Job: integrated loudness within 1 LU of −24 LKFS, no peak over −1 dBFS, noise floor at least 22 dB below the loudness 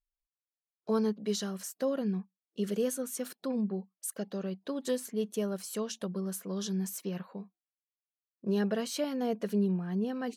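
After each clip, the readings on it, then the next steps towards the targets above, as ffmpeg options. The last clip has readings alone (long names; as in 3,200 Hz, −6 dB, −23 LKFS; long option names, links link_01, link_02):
integrated loudness −34.0 LKFS; sample peak −19.0 dBFS; target loudness −24.0 LKFS
→ -af "volume=10dB"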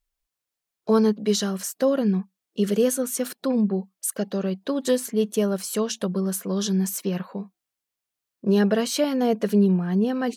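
integrated loudness −24.0 LKFS; sample peak −9.0 dBFS; background noise floor −86 dBFS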